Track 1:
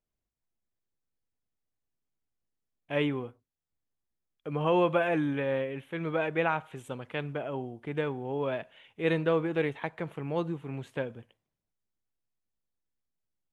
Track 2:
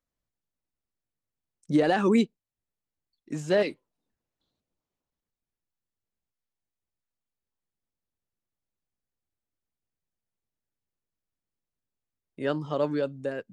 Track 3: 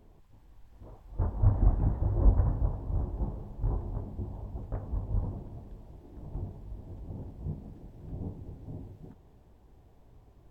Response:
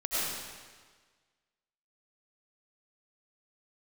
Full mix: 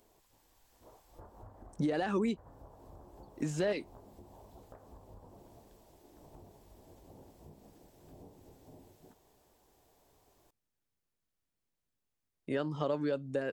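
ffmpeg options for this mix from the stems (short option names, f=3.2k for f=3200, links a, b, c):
-filter_complex "[1:a]alimiter=limit=-19dB:level=0:latency=1:release=287,adelay=100,volume=2dB[a];[2:a]bass=f=250:g=-9,treble=f=4k:g=12,volume=-1dB,lowshelf=f=270:g=-9,acompressor=threshold=-50dB:ratio=8,volume=0dB[b];[a][b]amix=inputs=2:normalize=0,acompressor=threshold=-33dB:ratio=2"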